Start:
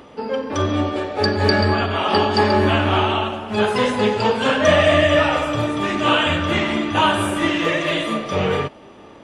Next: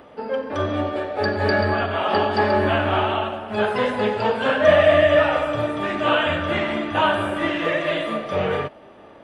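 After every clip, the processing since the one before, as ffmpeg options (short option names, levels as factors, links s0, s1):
-filter_complex "[0:a]equalizer=f=630:t=o:w=0.67:g=7,equalizer=f=1600:t=o:w=0.67:g=5,equalizer=f=6300:t=o:w=0.67:g=-8,acrossover=split=6200[s0][s1];[s1]acompressor=threshold=0.00355:ratio=4:attack=1:release=60[s2];[s0][s2]amix=inputs=2:normalize=0,volume=0.531"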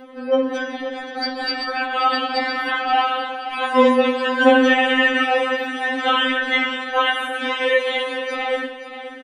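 -af "aecho=1:1:528|1056|1584|2112:0.266|0.104|0.0405|0.0158,afftfilt=real='re*3.46*eq(mod(b,12),0)':imag='im*3.46*eq(mod(b,12),0)':win_size=2048:overlap=0.75,volume=2.11"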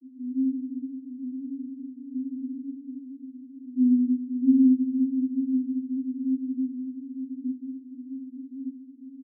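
-af "asuperpass=centerf=290:order=20:qfactor=2.7,aecho=1:1:890|1780|2670|3560:0.316|0.133|0.0558|0.0234"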